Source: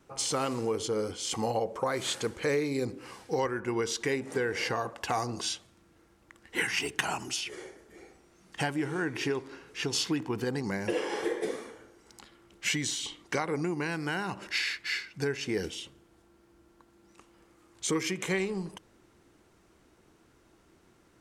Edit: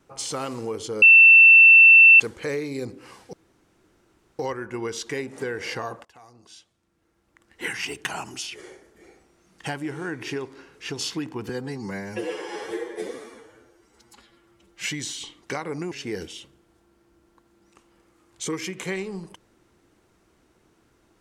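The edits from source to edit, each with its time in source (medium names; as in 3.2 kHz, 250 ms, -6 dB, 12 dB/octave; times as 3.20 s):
1.02–2.20 s: bleep 2.68 kHz -7.5 dBFS
3.33 s: insert room tone 1.06 s
4.99–6.65 s: fade in quadratic, from -21 dB
10.43–12.66 s: stretch 1.5×
13.74–15.34 s: delete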